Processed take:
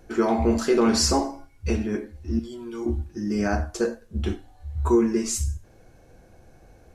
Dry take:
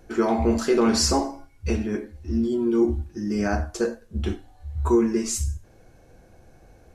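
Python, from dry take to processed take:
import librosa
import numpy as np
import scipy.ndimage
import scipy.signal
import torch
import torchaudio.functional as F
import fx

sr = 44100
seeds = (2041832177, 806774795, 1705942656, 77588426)

y = fx.peak_eq(x, sr, hz=270.0, db=-14.5, octaves=2.9, at=(2.39, 2.86))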